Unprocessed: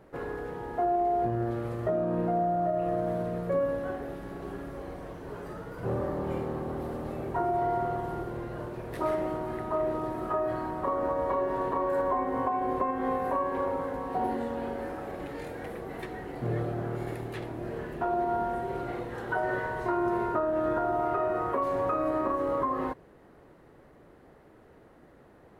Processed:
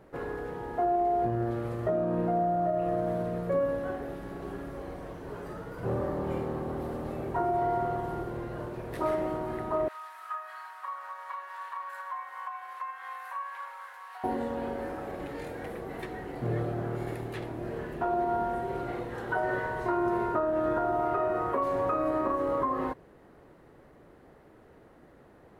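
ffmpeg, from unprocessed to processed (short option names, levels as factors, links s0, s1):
-filter_complex "[0:a]asettb=1/sr,asplit=3[s0][s1][s2];[s0]atrim=end=9.884[s3];[s1]atrim=start=9.88:end=14.24,asetpts=PTS-STARTPTS,afade=t=in:d=0.004:c=qsin,afade=t=out:st=4.356:d=0.004:c=qsin,highpass=f=1200:w=0.5412,highpass=f=1200:w=1.3066[s4];[s2]atrim=start=14.236[s5];[s3][s4]acrossfade=d=0.004:c1=hsin:c2=qsin[s6];[s6][s5]acrossfade=d=0.004:c1=qsin:c2=hsin"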